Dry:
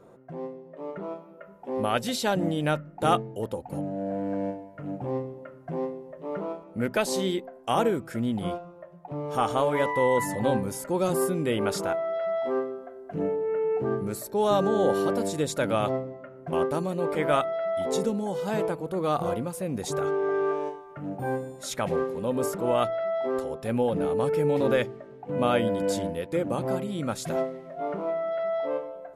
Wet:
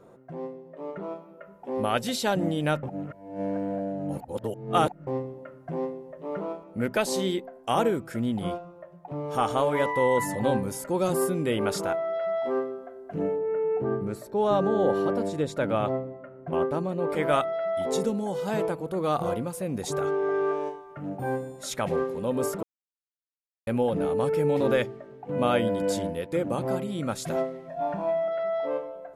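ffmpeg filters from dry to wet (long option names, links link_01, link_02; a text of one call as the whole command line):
ffmpeg -i in.wav -filter_complex "[0:a]asettb=1/sr,asplit=3[link_01][link_02][link_03];[link_01]atrim=end=13.384[link_04];[link_02]atrim=start=13.38:end=17.1,asetpts=PTS-STARTPTS,afade=type=in:duration=0.004:curve=qsin,afade=type=out:start_time=3.716:duration=0.004:curve=qsin,lowpass=frequency=2100:poles=1[link_05];[link_03]atrim=start=17.096[link_06];[link_04][link_05]acrossfade=duration=0.004:curve1=hsin:curve2=qsin[link_07];[link_07][link_06]acrossfade=duration=0.004:curve1=qsin:curve2=hsin,asettb=1/sr,asplit=3[link_08][link_09][link_10];[link_08]atrim=end=27.684[link_11];[link_09]atrim=start=27.68:end=28.28,asetpts=PTS-STARTPTS,afade=type=in:duration=0.004:curve=qsin,afade=type=out:start_time=0.596:duration=0.004:curve=qsin,aecho=1:1:1.2:0.85,atrim=end_sample=26460[link_12];[link_10]atrim=start=28.276[link_13];[link_11][link_12]acrossfade=duration=0.004:curve1=hsin:curve2=qsin[link_14];[link_14][link_13]acrossfade=duration=0.004:curve1=qsin:curve2=hsin,asplit=5[link_15][link_16][link_17][link_18][link_19];[link_15]atrim=end=2.832[link_20];[link_16]atrim=start=2.828:end=5.072,asetpts=PTS-STARTPTS,areverse[link_21];[link_17]atrim=start=5.068:end=22.63,asetpts=PTS-STARTPTS,afade=type=out:start_time=17.558:duration=0.004:curve=hsin[link_22];[link_18]atrim=start=22.63:end=23.67,asetpts=PTS-STARTPTS,volume=0[link_23];[link_19]atrim=start=23.67,asetpts=PTS-STARTPTS,afade=type=in:duration=0.004:curve=hsin[link_24];[link_20][link_21]acrossfade=duration=0.004:curve1=hsin:curve2=hsin[link_25];[link_22][link_23][link_24]concat=n=3:v=0:a=1[link_26];[link_25][link_26]acrossfade=duration=0.004:curve1=hsin:curve2=hsin" out.wav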